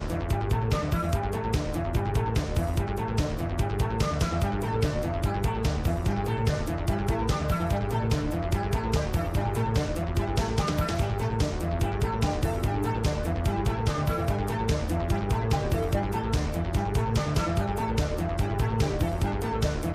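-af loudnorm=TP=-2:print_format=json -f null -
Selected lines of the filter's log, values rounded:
"input_i" : "-27.9",
"input_tp" : "-11.9",
"input_lra" : "0.5",
"input_thresh" : "-37.9",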